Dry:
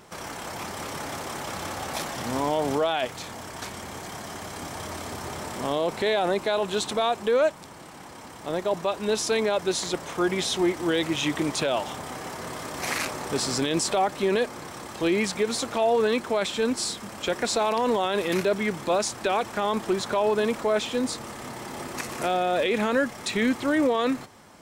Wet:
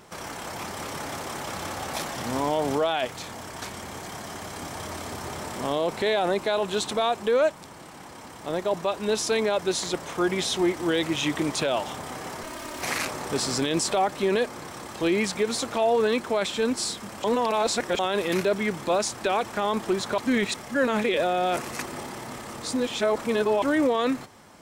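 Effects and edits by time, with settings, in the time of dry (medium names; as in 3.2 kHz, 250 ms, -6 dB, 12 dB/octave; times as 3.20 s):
12.43–12.83 s: comb filter that takes the minimum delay 3.2 ms
17.24–17.99 s: reverse
20.18–23.62 s: reverse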